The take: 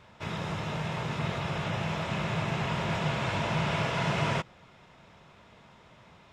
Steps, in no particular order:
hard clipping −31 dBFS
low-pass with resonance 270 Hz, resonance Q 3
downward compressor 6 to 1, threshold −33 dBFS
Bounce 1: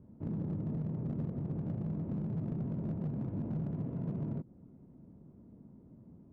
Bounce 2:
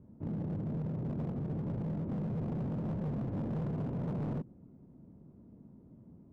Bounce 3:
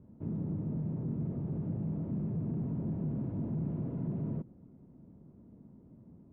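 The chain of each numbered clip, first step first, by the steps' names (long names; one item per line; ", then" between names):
downward compressor, then low-pass with resonance, then hard clipping
low-pass with resonance, then hard clipping, then downward compressor
hard clipping, then downward compressor, then low-pass with resonance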